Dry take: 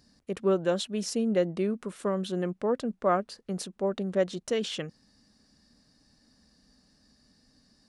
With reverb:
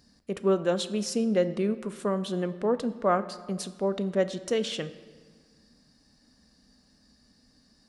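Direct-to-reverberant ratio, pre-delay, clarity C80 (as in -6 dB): 11.5 dB, 4 ms, 15.5 dB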